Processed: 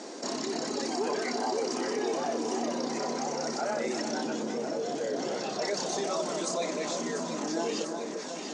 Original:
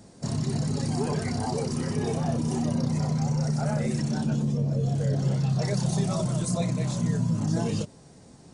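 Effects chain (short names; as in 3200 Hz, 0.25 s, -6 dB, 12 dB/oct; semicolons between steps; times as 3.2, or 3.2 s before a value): elliptic band-pass 310–6700 Hz, stop band 40 dB; echo with dull and thin repeats by turns 0.347 s, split 1700 Hz, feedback 80%, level -10 dB; fast leveller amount 50%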